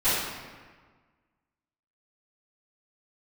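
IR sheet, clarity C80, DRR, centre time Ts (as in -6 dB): 1.0 dB, -19.0 dB, 97 ms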